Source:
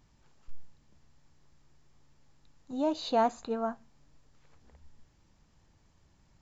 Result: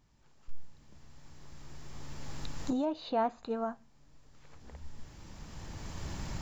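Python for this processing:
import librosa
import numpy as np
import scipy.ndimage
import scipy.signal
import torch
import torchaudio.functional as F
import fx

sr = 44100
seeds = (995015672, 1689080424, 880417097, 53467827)

y = fx.recorder_agc(x, sr, target_db=-21.5, rise_db_per_s=12.0, max_gain_db=30)
y = fx.lowpass(y, sr, hz=3300.0, slope=12, at=(2.85, 3.43))
y = F.gain(torch.from_numpy(y), -4.0).numpy()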